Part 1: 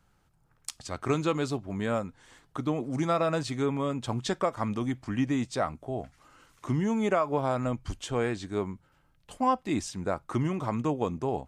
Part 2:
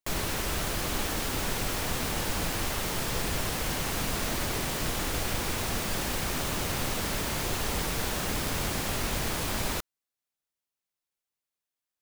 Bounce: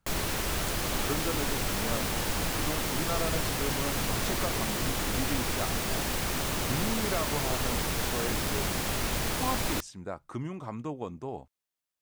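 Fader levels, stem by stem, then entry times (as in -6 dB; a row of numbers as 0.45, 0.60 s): -7.5, 0.0 dB; 0.00, 0.00 s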